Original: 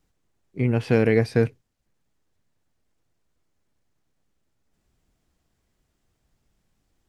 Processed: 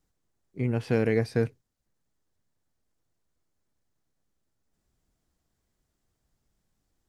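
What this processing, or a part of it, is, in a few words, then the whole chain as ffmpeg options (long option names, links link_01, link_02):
exciter from parts: -filter_complex "[0:a]asplit=2[link_01][link_02];[link_02]highpass=frequency=2400:width=0.5412,highpass=frequency=2400:width=1.3066,asoftclip=type=tanh:threshold=-36.5dB,volume=-8dB[link_03];[link_01][link_03]amix=inputs=2:normalize=0,volume=-5.5dB"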